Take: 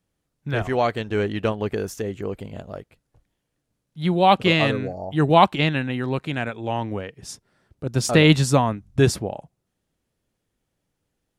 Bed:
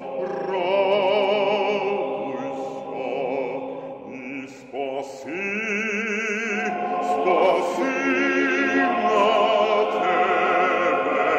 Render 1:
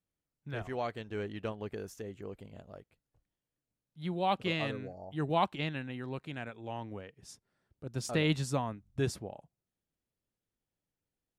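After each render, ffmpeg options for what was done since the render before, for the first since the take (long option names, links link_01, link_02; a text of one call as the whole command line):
ffmpeg -i in.wav -af "volume=-14.5dB" out.wav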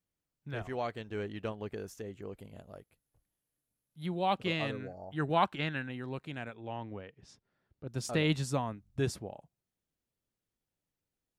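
ffmpeg -i in.wav -filter_complex "[0:a]asettb=1/sr,asplit=3[link_01][link_02][link_03];[link_01]atrim=end=2.384[link_04];[link_02]atrim=start=2.38:end=4.06,asetpts=PTS-STARTPTS,afade=type=in:duration=0.004:curve=qsin,afade=type=out:start_time=1.676:duration=0.004:curve=qsin,equalizer=frequency=11000:width=2.2:gain=14.5[link_05];[link_03]atrim=start=4.056[link_06];[link_04][link_05]acrossfade=duration=0.004:curve1=hsin:curve2=qsin[link_07];[link_07][link_06]acrossfade=duration=0.004:curve1=qsin:curve2=hsin,asettb=1/sr,asplit=3[link_08][link_09][link_10];[link_08]atrim=end=4.804[link_11];[link_09]atrim=start=4.8:end=5.89,asetpts=PTS-STARTPTS,afade=type=in:duration=0.004:curve=qsin,afade=type=out:start_time=1.086:duration=0.004:curve=qsin,equalizer=frequency=1500:width_type=o:width=0.63:gain=8.5[link_12];[link_10]atrim=start=5.886[link_13];[link_11][link_12]acrossfade=duration=0.004:curve1=hsin:curve2=qsin[link_14];[link_14][link_13]acrossfade=duration=0.004:curve1=qsin:curve2=hsin,asettb=1/sr,asplit=3[link_15][link_16][link_17];[link_15]atrim=end=6.544[link_18];[link_16]atrim=start=6.54:end=7.88,asetpts=PTS-STARTPTS,afade=type=in:duration=0.004:curve=qsin,afade=type=out:start_time=1.336:duration=0.004:curve=qsin,lowpass=4300[link_19];[link_17]atrim=start=7.876[link_20];[link_18][link_19]acrossfade=duration=0.004:curve1=hsin:curve2=qsin[link_21];[link_21][link_20]acrossfade=duration=0.004:curve1=qsin:curve2=hsin" out.wav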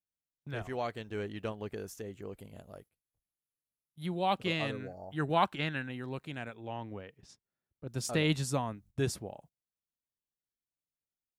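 ffmpeg -i in.wav -af "agate=range=-15dB:threshold=-57dB:ratio=16:detection=peak,highshelf=frequency=7300:gain=7" out.wav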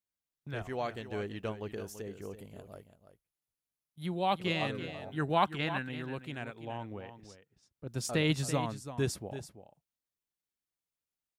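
ffmpeg -i in.wav -af "aecho=1:1:334:0.266" out.wav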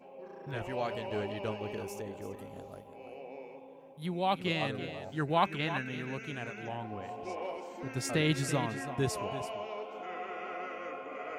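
ffmpeg -i in.wav -i bed.wav -filter_complex "[1:a]volume=-20.5dB[link_01];[0:a][link_01]amix=inputs=2:normalize=0" out.wav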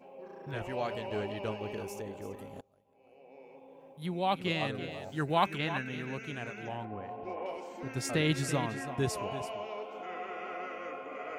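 ffmpeg -i in.wav -filter_complex "[0:a]asettb=1/sr,asplit=3[link_01][link_02][link_03];[link_01]atrim=end=4.914[link_04];[link_02]atrim=start=4.91:end=5.58,asetpts=PTS-STARTPTS,afade=type=in:duration=0.004:curve=qsin,afade=type=out:start_time=0.666:duration=0.004:curve=qsin,highshelf=frequency=6000:gain=7[link_05];[link_03]atrim=start=5.576[link_06];[link_04][link_05]acrossfade=duration=0.004:curve1=hsin:curve2=qsin[link_07];[link_07][link_06]acrossfade=duration=0.004:curve1=qsin:curve2=hsin,asettb=1/sr,asplit=3[link_08][link_09][link_10];[link_08]atrim=end=6.854[link_11];[link_09]atrim=start=6.85:end=7.46,asetpts=PTS-STARTPTS,afade=type=in:duration=0.004:curve=qsin,afade=type=out:start_time=0.606:duration=0.004:curve=qsin,lowpass=2100[link_12];[link_10]atrim=start=7.456[link_13];[link_11][link_12]acrossfade=duration=0.004:curve1=hsin:curve2=qsin[link_14];[link_14][link_13]acrossfade=duration=0.004:curve1=qsin:curve2=hsin,asplit=2[link_15][link_16];[link_15]atrim=end=2.61,asetpts=PTS-STARTPTS,afade=type=out:start_time=2.606:duration=0.004:curve=hsin:silence=0.0668344[link_17];[link_16]atrim=start=2.61,asetpts=PTS-STARTPTS,afade=type=in:duration=1.24:curve=qua:silence=0.0668344[link_18];[link_17][link_18]concat=n=2:v=0:a=1" out.wav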